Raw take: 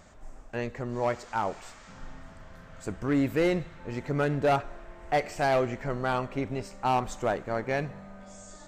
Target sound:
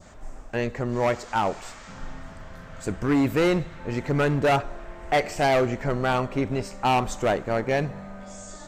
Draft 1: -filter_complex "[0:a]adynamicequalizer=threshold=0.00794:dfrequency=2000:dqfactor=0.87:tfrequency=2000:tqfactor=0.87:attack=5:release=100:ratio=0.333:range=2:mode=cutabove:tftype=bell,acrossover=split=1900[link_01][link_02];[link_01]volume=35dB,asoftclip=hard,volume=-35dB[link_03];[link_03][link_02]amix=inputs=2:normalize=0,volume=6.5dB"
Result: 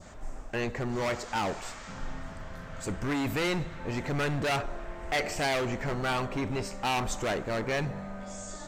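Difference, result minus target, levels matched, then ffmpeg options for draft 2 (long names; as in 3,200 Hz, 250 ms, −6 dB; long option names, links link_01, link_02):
gain into a clipping stage and back: distortion +10 dB
-filter_complex "[0:a]adynamicequalizer=threshold=0.00794:dfrequency=2000:dqfactor=0.87:tfrequency=2000:tqfactor=0.87:attack=5:release=100:ratio=0.333:range=2:mode=cutabove:tftype=bell,acrossover=split=1900[link_01][link_02];[link_01]volume=24dB,asoftclip=hard,volume=-24dB[link_03];[link_03][link_02]amix=inputs=2:normalize=0,volume=6.5dB"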